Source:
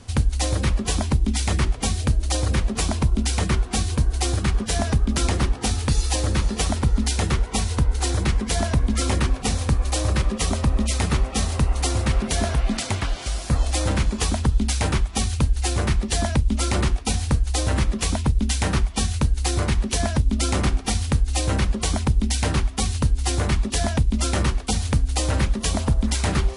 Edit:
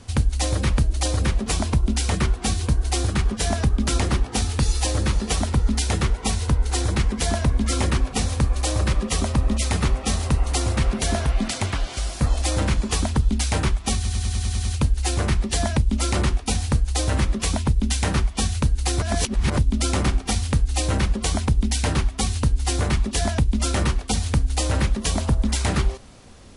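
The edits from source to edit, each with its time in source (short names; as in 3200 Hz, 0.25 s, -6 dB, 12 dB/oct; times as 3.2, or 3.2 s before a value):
0.78–2.07 cut
15.24 stutter 0.10 s, 8 plays
19.61–20.16 reverse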